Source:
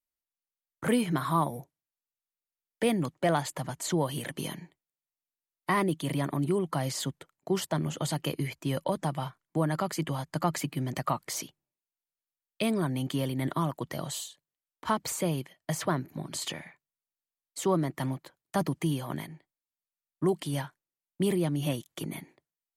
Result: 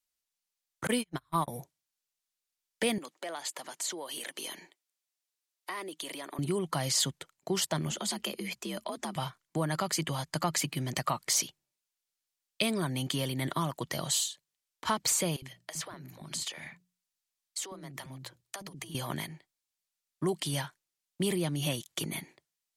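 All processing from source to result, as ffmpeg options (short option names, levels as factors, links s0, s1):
-filter_complex "[0:a]asettb=1/sr,asplit=3[s0][s1][s2];[s0]atrim=end=0.874[s3];[s1]atrim=start=0.87:end=1.48,asetpts=PTS-STARTPTS,afade=t=in:d=0.004:c=qsin,afade=t=out:st=0.606:d=0.004:c=qsin,agate=range=0.00708:threshold=0.0501:ratio=16:release=100:detection=peak,bandreject=f=50:t=h:w=6,bandreject=f=100:t=h:w=6[s4];[s2]atrim=start=1.476[s5];[s3][s4]acrossfade=d=0.004:c1=hsin:c2=qsin[s6];[s6][s5]acrossfade=d=0.004:c1=qsin:c2=hsin,asettb=1/sr,asplit=3[s7][s8][s9];[s7]atrim=end=2.984[s10];[s8]atrim=start=2.98:end=6.39,asetpts=PTS-STARTPTS,afade=t=in:d=0.004:c=qsin,afade=t=out:st=3.406:d=0.004:c=qsin,highpass=f=290:w=0.5412,highpass=f=290:w=1.3066,acompressor=threshold=0.00708:ratio=2.5:attack=3.2:release=140:knee=1:detection=peak[s11];[s9]atrim=start=6.386[s12];[s10][s11]acrossfade=d=0.004:c1=hsin:c2=qsin[s13];[s13][s12]acrossfade=d=0.004:c1=qsin:c2=hsin,asettb=1/sr,asplit=3[s14][s15][s16];[s14]atrim=end=7.914[s17];[s15]atrim=start=7.91:end=9.16,asetpts=PTS-STARTPTS,afade=t=in:d=0.004:c=qsin,afade=t=out:st=1.246:d=0.004:c=qsin,afreqshift=60,acompressor=threshold=0.0158:ratio=2.5:attack=3.2:release=140:knee=1:detection=peak[s18];[s16]atrim=start=9.156[s19];[s17][s18]acrossfade=d=0.004:c1=hsin:c2=qsin[s20];[s20][s19]acrossfade=d=0.004:c1=qsin:c2=hsin,asettb=1/sr,asplit=3[s21][s22][s23];[s21]atrim=end=15.364[s24];[s22]atrim=start=15.36:end=18.95,asetpts=PTS-STARTPTS,afade=t=in:d=0.004:c=qsin,afade=t=out:st=3.586:d=0.004:c=qsin,bandreject=f=60:t=h:w=6,bandreject=f=120:t=h:w=6,bandreject=f=180:t=h:w=6,acompressor=threshold=0.01:ratio=8:attack=3.2:release=140:knee=1:detection=peak,acrossover=split=330[s25][s26];[s25]adelay=60[s27];[s27][s26]amix=inputs=2:normalize=0,atrim=end_sample=158319[s28];[s23]atrim=start=18.946[s29];[s24][s28]acrossfade=d=0.004:c1=hsin:c2=qsin[s30];[s30][s29]acrossfade=d=0.004:c1=qsin:c2=hsin,equalizer=f=280:t=o:w=0.34:g=-3,acompressor=threshold=0.0224:ratio=1.5,equalizer=f=5700:t=o:w=2.8:g=9.5"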